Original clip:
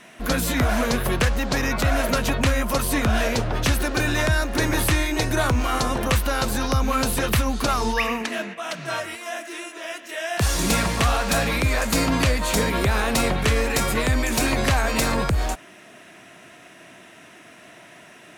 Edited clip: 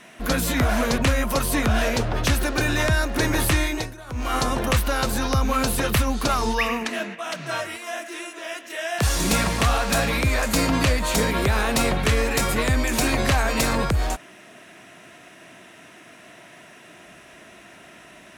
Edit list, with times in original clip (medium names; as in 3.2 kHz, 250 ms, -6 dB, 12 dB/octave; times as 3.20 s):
0.98–2.37 s: delete
5.06–5.74 s: dip -20 dB, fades 0.28 s